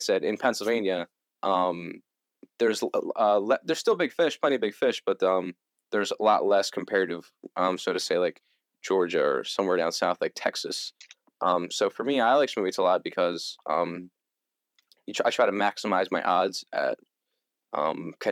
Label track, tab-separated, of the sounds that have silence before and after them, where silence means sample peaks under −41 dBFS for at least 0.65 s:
14.920000	16.940000	sound